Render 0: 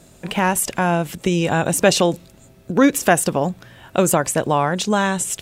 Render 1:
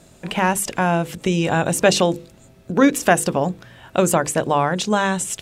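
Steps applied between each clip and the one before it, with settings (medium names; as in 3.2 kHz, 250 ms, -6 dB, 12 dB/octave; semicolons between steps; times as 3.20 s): treble shelf 12 kHz -8.5 dB; hum notches 50/100/150/200/250/300/350/400/450/500 Hz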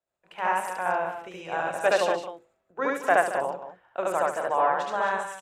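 three-band isolator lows -23 dB, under 480 Hz, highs -17 dB, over 2.1 kHz; loudspeakers at several distances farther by 25 m 0 dB, 47 m -9 dB, 77 m -10 dB, 90 m -7 dB; three bands expanded up and down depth 70%; trim -6.5 dB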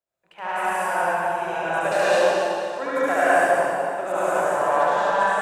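in parallel at -11.5 dB: saturation -24.5 dBFS, distortion -8 dB; on the sum: reverberation RT60 2.4 s, pre-delay 96 ms, DRR -9.5 dB; trim -5.5 dB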